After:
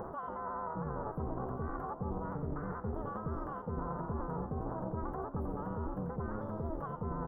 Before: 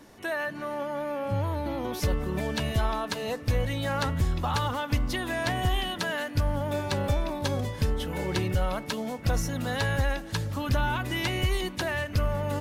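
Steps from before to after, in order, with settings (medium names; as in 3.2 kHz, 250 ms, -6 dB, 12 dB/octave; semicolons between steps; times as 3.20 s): distance through air 250 m; on a send: frequency-shifting echo 155 ms, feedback 34%, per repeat -64 Hz, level -6.5 dB; on the sum: upward compressor, threshold -31 dBFS; AM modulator 180 Hz, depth 95%; reverse; compression 6:1, threshold -39 dBFS, peak gain reduction 15.5 dB; reverse; elliptic band-stop 710–8300 Hz, stop band 40 dB; speed mistake 45 rpm record played at 78 rpm; trim +5.5 dB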